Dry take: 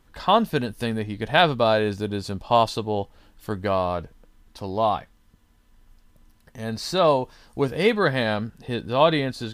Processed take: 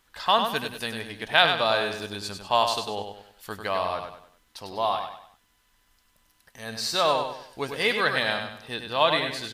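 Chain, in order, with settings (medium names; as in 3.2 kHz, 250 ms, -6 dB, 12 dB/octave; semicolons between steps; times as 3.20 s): tilt shelf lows -8.5 dB, about 650 Hz; on a send: feedback delay 98 ms, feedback 38%, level -6.5 dB; on the sum: trim -5.5 dB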